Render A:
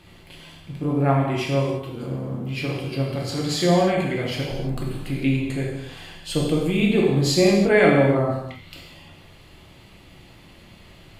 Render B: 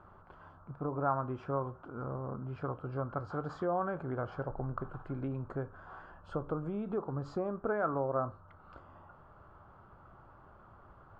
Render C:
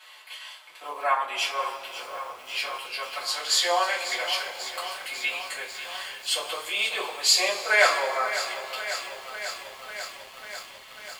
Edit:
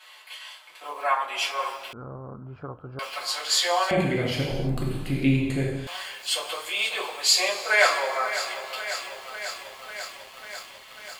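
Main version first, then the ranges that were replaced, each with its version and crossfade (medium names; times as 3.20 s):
C
1.93–2.99 s: from B
3.91–5.87 s: from A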